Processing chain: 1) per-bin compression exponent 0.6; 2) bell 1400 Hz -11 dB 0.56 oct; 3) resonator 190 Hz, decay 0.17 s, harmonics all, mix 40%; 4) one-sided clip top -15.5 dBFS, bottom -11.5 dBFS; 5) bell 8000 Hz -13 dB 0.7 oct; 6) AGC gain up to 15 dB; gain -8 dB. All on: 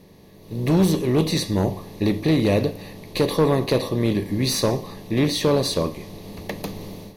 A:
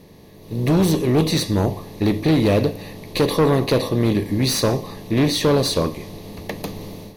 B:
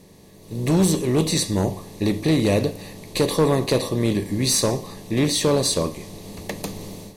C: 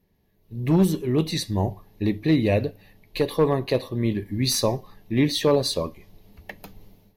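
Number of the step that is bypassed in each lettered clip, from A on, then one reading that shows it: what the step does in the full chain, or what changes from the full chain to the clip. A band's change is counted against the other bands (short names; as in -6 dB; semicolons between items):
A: 3, crest factor change -2.0 dB; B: 5, 8 kHz band +7.5 dB; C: 1, crest factor change +2.0 dB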